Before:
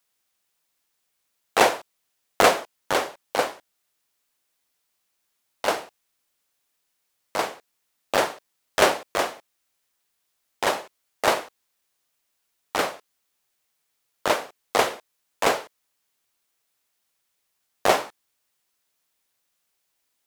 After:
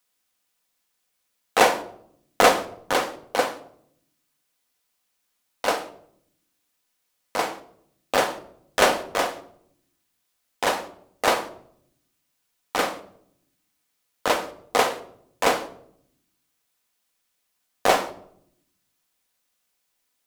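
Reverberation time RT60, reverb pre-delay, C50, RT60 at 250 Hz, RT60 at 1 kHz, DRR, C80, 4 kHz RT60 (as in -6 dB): 0.70 s, 4 ms, 14.0 dB, 1.1 s, 0.60 s, 8.0 dB, 18.5 dB, 0.45 s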